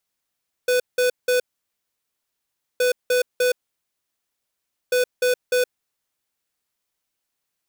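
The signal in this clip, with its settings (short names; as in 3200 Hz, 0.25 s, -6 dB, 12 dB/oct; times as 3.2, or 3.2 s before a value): beep pattern square 498 Hz, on 0.12 s, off 0.18 s, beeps 3, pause 1.40 s, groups 3, -18.5 dBFS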